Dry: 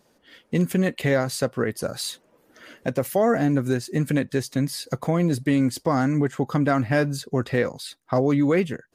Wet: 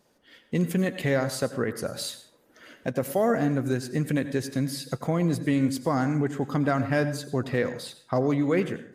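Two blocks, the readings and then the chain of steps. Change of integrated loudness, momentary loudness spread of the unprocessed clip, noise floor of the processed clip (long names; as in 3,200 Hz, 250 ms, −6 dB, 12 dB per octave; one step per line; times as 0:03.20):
−3.5 dB, 8 LU, −63 dBFS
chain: dense smooth reverb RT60 0.57 s, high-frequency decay 0.65×, pre-delay 75 ms, DRR 11.5 dB
level −3.5 dB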